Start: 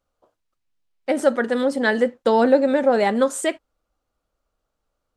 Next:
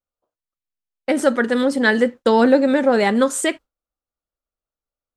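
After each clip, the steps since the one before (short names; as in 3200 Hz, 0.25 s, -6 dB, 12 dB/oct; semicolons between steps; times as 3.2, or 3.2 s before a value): gate with hold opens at -31 dBFS; dynamic EQ 660 Hz, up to -6 dB, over -31 dBFS, Q 1.4; gain +5 dB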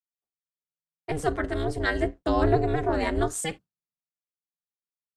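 octaver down 1 oct, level 0 dB; ring modulator 160 Hz; three-band expander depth 40%; gain -7 dB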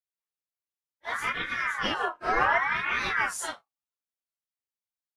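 phase scrambler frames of 0.1 s; ring modulator with a swept carrier 1400 Hz, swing 30%, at 0.68 Hz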